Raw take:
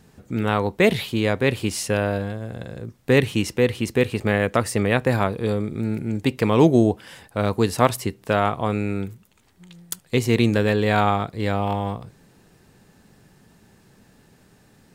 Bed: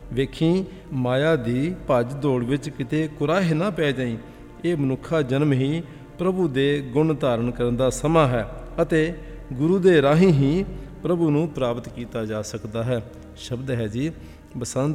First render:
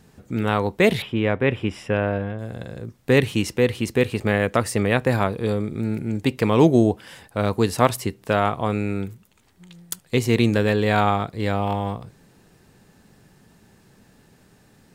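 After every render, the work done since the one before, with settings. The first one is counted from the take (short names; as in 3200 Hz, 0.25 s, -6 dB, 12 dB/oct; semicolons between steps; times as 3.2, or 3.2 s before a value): 1.02–2.39 polynomial smoothing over 25 samples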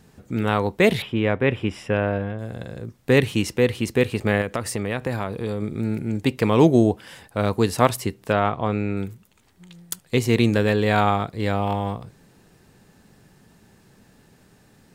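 4.41–5.62 compressor 2.5:1, threshold -23 dBFS; 8.32–8.97 air absorption 110 m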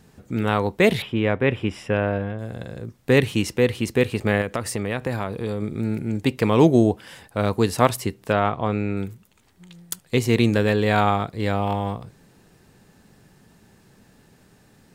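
nothing audible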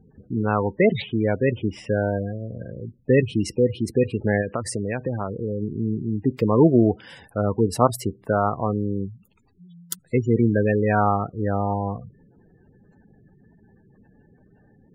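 spectral gate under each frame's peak -15 dB strong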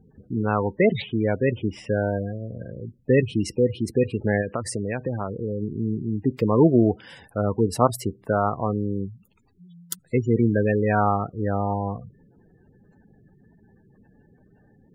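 gain -1 dB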